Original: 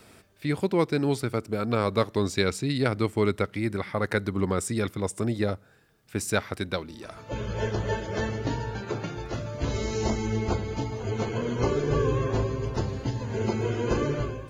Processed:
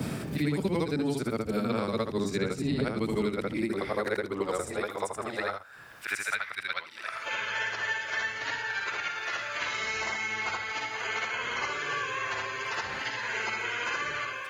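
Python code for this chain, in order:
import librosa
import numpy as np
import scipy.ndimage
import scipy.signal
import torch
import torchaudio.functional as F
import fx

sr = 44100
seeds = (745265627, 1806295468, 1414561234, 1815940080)

y = fx.frame_reverse(x, sr, frame_ms=164.0)
y = fx.dmg_wind(y, sr, seeds[0], corner_hz=85.0, level_db=-33.0)
y = fx.filter_sweep_highpass(y, sr, from_hz=170.0, to_hz=1900.0, start_s=3.08, end_s=6.36, q=1.4)
y = fx.band_squash(y, sr, depth_pct=100)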